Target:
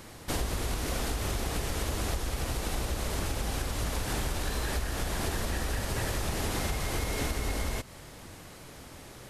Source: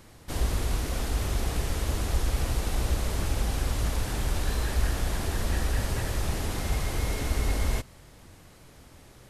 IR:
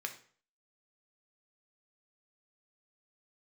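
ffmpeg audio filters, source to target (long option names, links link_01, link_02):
-af "acompressor=threshold=-30dB:ratio=6,lowshelf=frequency=130:gain=-6.5,volume=6.5dB"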